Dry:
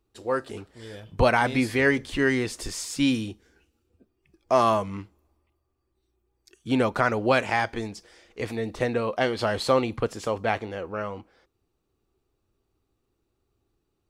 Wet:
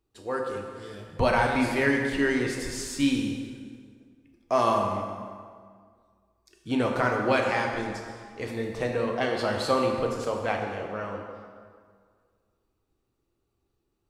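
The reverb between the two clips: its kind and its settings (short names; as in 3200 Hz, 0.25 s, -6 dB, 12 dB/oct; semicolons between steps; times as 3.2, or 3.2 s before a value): plate-style reverb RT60 1.9 s, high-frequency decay 0.7×, DRR 1 dB; gain -4 dB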